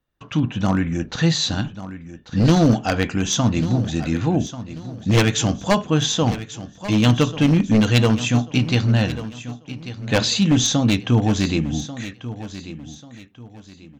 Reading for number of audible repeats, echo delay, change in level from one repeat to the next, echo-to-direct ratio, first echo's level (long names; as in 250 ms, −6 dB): 3, 1,140 ms, −10.0 dB, −13.5 dB, −14.0 dB